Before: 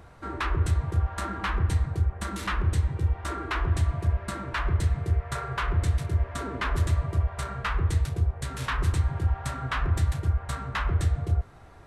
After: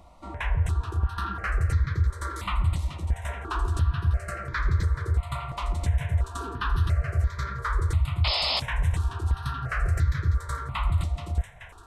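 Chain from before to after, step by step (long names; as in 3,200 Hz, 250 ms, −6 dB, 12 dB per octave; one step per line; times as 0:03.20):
high-shelf EQ 4,700 Hz −5.5 dB
delay with a high-pass on its return 429 ms, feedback 57%, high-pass 1,500 Hz, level −7.5 dB
sound drawn into the spectrogram noise, 0:08.24–0:08.60, 360–5,300 Hz −23 dBFS
parametric band 260 Hz −6.5 dB 1.1 octaves
notch filter 800 Hz, Q 16
in parallel at +2.5 dB: brickwall limiter −19.5 dBFS, peak gain reduction 9 dB
on the sum: step-sequenced phaser 2.9 Hz 430–2,800 Hz
level −4 dB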